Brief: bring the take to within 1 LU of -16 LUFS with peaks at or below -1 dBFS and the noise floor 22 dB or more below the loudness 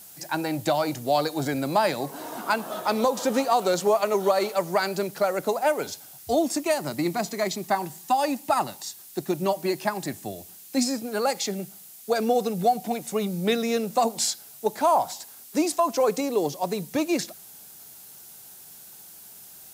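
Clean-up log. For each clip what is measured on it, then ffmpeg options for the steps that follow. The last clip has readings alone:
noise floor -47 dBFS; noise floor target -48 dBFS; loudness -25.5 LUFS; peak -9.5 dBFS; loudness target -16.0 LUFS
-> -af "afftdn=nr=6:nf=-47"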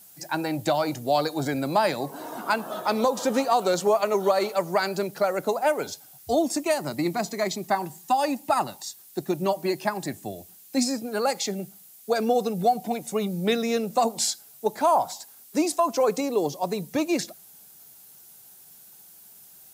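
noise floor -50 dBFS; loudness -26.0 LUFS; peak -10.0 dBFS; loudness target -16.0 LUFS
-> -af "volume=10dB,alimiter=limit=-1dB:level=0:latency=1"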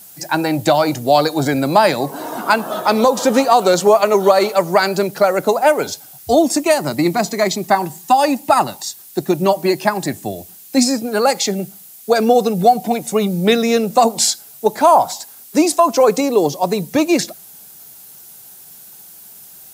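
loudness -16.0 LUFS; peak -1.0 dBFS; noise floor -40 dBFS

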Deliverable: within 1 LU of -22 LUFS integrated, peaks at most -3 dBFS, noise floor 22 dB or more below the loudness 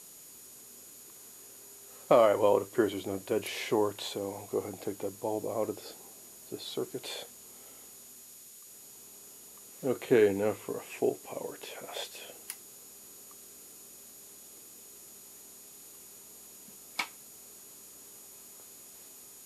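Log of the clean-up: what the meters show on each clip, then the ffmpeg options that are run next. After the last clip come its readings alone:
steady tone 6800 Hz; tone level -55 dBFS; noise floor -52 dBFS; noise floor target -54 dBFS; loudness -31.5 LUFS; peak -10.5 dBFS; loudness target -22.0 LUFS
-> -af "bandreject=f=6.8k:w=30"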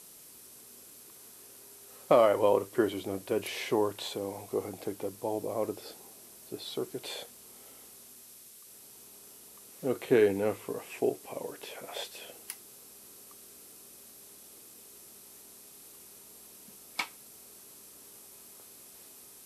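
steady tone none; noise floor -53 dBFS; noise floor target -54 dBFS
-> -af "afftdn=nr=6:nf=-53"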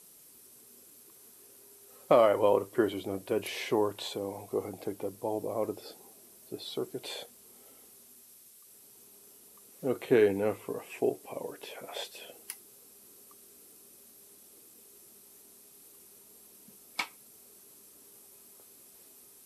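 noise floor -57 dBFS; loudness -31.5 LUFS; peak -10.5 dBFS; loudness target -22.0 LUFS
-> -af "volume=9.5dB,alimiter=limit=-3dB:level=0:latency=1"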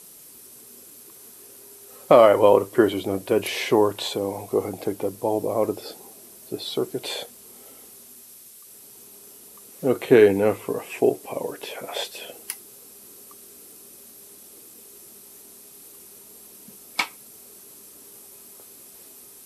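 loudness -22.5 LUFS; peak -3.0 dBFS; noise floor -47 dBFS

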